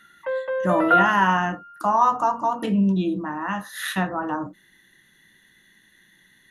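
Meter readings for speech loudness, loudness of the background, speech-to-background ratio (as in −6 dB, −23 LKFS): −23.0 LKFS, −22.5 LKFS, −0.5 dB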